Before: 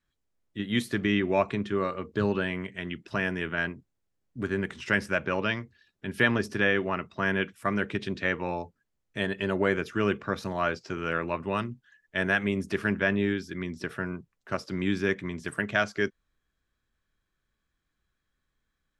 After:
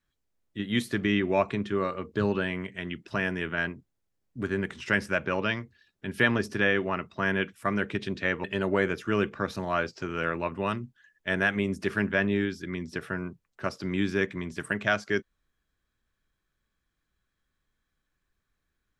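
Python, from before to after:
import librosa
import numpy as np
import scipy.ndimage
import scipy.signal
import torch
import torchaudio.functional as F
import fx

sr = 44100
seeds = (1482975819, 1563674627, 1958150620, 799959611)

y = fx.edit(x, sr, fx.cut(start_s=8.44, length_s=0.88), tone=tone)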